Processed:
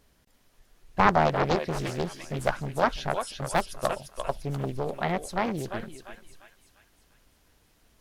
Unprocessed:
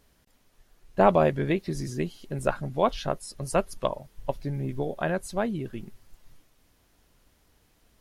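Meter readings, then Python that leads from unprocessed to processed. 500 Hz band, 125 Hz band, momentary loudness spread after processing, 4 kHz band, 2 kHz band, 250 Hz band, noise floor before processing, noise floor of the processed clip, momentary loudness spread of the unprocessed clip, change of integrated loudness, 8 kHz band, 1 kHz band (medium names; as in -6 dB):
-2.5 dB, -0.5 dB, 12 LU, +4.0 dB, +4.5 dB, -2.0 dB, -66 dBFS, -65 dBFS, 13 LU, -0.5 dB, +1.0 dB, +3.0 dB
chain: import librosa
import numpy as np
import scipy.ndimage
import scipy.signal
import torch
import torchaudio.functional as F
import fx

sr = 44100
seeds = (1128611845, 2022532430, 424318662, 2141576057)

y = fx.echo_thinned(x, sr, ms=346, feedback_pct=48, hz=910.0, wet_db=-4.0)
y = fx.doppler_dist(y, sr, depth_ms=0.96)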